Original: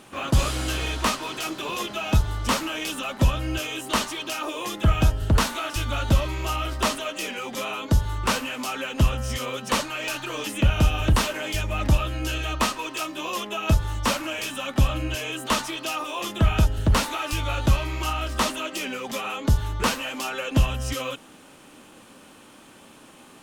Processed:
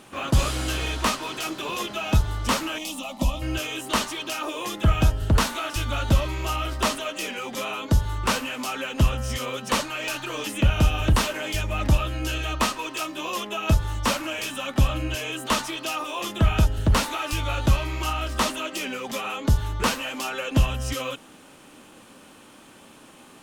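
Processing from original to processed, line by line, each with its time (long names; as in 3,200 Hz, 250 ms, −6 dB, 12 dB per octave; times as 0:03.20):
0:02.78–0:03.42: phaser with its sweep stopped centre 420 Hz, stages 6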